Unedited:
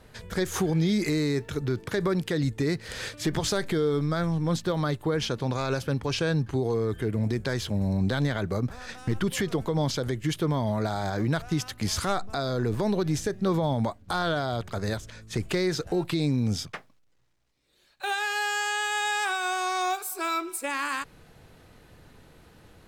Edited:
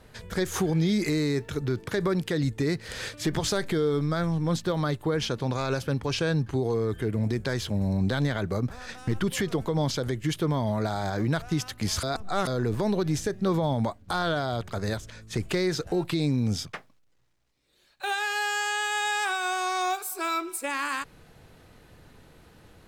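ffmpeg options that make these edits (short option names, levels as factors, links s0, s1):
-filter_complex "[0:a]asplit=3[s0][s1][s2];[s0]atrim=end=12.032[s3];[s1]atrim=start=12.028:end=12.472,asetpts=PTS-STARTPTS,areverse[s4];[s2]atrim=start=12.468[s5];[s3][s4]acrossfade=d=0.004:c1=hsin:c2=hsin[s6];[s6][s5]acrossfade=d=0.004:c1=hsin:c2=hsin"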